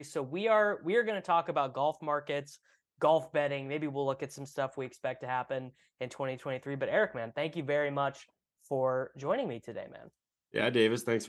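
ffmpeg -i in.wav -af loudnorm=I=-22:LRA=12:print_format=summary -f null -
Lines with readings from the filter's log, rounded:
Input Integrated:    -32.3 LUFS
Input True Peak:     -13.3 dBTP
Input LRA:             2.1 LU
Input Threshold:     -43.0 LUFS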